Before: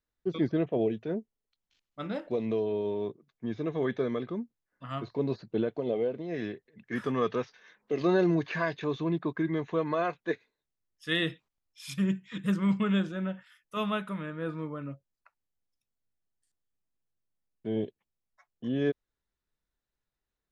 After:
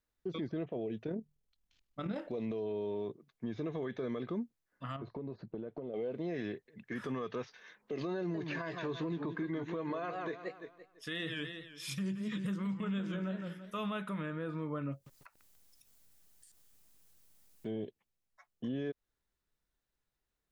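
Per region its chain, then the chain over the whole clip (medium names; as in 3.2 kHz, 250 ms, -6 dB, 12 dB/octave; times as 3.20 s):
1.04–2.18 s: bass shelf 160 Hz +11 dB + hum notches 50/100/150 Hz + AM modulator 40 Hz, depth 40%
4.96–5.94 s: low-pass 1 kHz 6 dB/octave + compression 16:1, threshold -38 dBFS
8.17–13.79 s: doubling 16 ms -12.5 dB + modulated delay 169 ms, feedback 40%, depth 191 cents, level -11 dB
14.92–17.71 s: treble shelf 4.6 kHz +11.5 dB + upward compressor, threshold -50 dBFS + bit-crushed delay 143 ms, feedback 55%, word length 9-bit, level -10 dB
whole clip: compression, threshold -31 dBFS; peak limiter -30.5 dBFS; trim +1 dB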